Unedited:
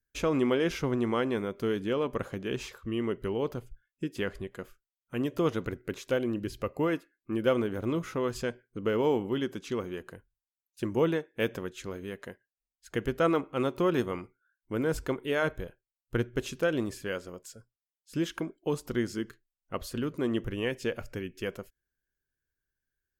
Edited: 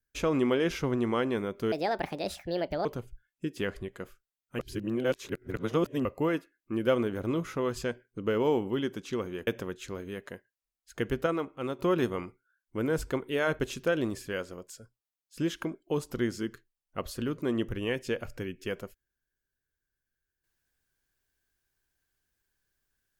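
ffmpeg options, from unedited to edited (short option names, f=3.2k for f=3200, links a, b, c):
-filter_complex "[0:a]asplit=9[a][b][c][d][e][f][g][h][i];[a]atrim=end=1.724[j];[b]atrim=start=1.72:end=3.44,asetpts=PTS-STARTPTS,asetrate=67032,aresample=44100[k];[c]atrim=start=3.436:end=5.182[l];[d]atrim=start=5.178:end=6.642,asetpts=PTS-STARTPTS,areverse[m];[e]atrim=start=6.638:end=10.062[n];[f]atrim=start=11.428:end=13.222[o];[g]atrim=start=13.218:end=13.752,asetpts=PTS-STARTPTS,volume=-5dB[p];[h]atrim=start=13.748:end=15.552[q];[i]atrim=start=16.348[r];[j][k]acrossfade=d=0.004:c1=hsin:c2=hsin[s];[s][l]acrossfade=d=0.004:c1=hsin:c2=hsin[t];[t][m]acrossfade=d=0.004:c1=hsin:c2=hsin[u];[u][n]acrossfade=d=0.004:c1=hsin:c2=hsin[v];[v][o]acrossfade=d=0.004:c1=hsin:c2=hsin[w];[w][p]acrossfade=d=0.004:c1=hsin:c2=hsin[x];[x][q]acrossfade=d=0.004:c1=hsin:c2=hsin[y];[y][r]acrossfade=d=0.004:c1=hsin:c2=hsin"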